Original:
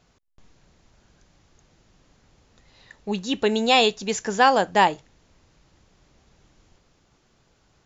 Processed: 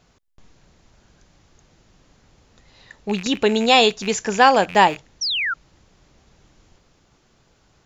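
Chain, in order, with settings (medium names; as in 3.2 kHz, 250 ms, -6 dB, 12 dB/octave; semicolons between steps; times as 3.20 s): rattle on loud lows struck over -43 dBFS, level -25 dBFS; 3.26–4.13 s: upward compressor, threshold -23 dBFS; 5.21–5.54 s: painted sound fall 1.3–6 kHz -26 dBFS; trim +3.5 dB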